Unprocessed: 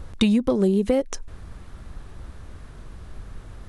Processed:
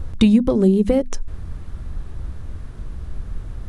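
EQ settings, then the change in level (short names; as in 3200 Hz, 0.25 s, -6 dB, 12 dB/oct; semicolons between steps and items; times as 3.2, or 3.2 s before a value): low shelf 260 Hz +11 dB; notches 50/100/150/200/250 Hz; 0.0 dB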